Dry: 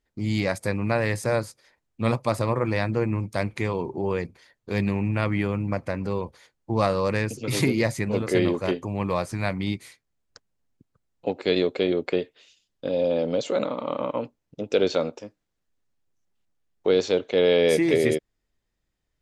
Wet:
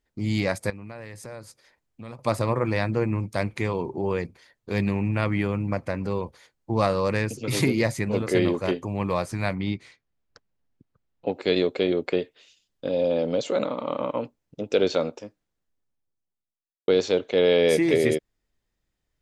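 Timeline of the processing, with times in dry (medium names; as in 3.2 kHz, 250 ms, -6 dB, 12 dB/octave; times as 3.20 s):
0.70–2.19 s: compression 3:1, threshold -41 dBFS
9.55–11.33 s: distance through air 120 m
15.17–16.88 s: studio fade out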